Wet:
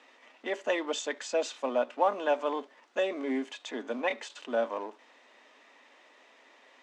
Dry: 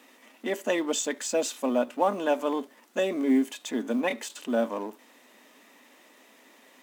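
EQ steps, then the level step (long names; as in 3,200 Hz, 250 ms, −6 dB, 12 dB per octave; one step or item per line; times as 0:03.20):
band-pass filter 460–8,000 Hz
high-frequency loss of the air 100 metres
0.0 dB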